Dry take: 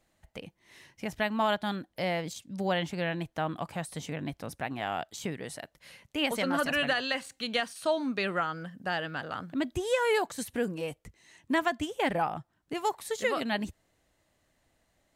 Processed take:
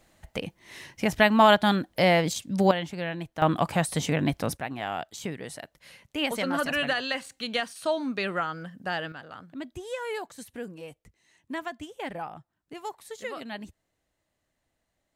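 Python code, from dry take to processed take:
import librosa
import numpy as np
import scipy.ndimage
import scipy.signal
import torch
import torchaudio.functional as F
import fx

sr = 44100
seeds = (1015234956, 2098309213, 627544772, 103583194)

y = fx.gain(x, sr, db=fx.steps((0.0, 10.0), (2.71, -0.5), (3.42, 10.5), (4.57, 1.0), (9.12, -7.0)))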